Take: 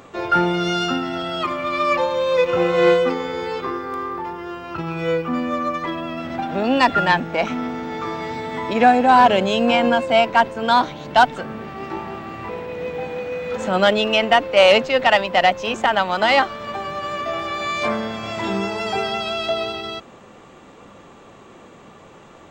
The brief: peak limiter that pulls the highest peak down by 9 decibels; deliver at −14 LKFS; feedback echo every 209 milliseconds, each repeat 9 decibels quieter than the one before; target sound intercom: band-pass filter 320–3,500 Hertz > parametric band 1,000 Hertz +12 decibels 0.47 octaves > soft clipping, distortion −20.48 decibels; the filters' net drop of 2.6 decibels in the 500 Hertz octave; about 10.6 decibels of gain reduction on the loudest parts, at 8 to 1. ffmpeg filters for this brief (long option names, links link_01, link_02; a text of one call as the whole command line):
ffmpeg -i in.wav -af "equalizer=frequency=500:width_type=o:gain=-4,acompressor=threshold=-21dB:ratio=8,alimiter=limit=-19dB:level=0:latency=1,highpass=320,lowpass=3500,equalizer=frequency=1000:width_type=o:width=0.47:gain=12,aecho=1:1:209|418|627|836:0.355|0.124|0.0435|0.0152,asoftclip=threshold=-15dB,volume=11.5dB" out.wav